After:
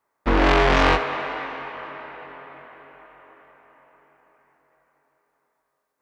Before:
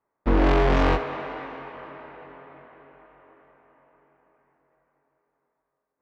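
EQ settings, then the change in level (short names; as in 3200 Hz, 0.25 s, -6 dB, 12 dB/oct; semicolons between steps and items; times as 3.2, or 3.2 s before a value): tilt shelf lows -5.5 dB, about 780 Hz; +4.5 dB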